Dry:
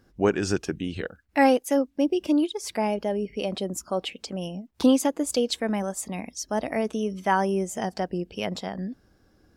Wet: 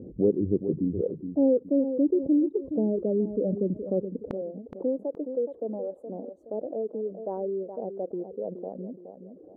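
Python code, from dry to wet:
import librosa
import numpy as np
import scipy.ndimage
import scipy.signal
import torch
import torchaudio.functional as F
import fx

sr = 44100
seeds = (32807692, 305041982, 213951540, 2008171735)

y = scipy.signal.sosfilt(scipy.signal.ellip(4, 1.0, 80, 510.0, 'lowpass', fs=sr, output='sos'), x)
y = fx.dereverb_blind(y, sr, rt60_s=1.0)
y = fx.highpass(y, sr, hz=fx.steps((0.0, 130.0), (4.31, 750.0)), slope=12)
y = fx.echo_feedback(y, sr, ms=420, feedback_pct=18, wet_db=-17.5)
y = fx.env_flatten(y, sr, amount_pct=50)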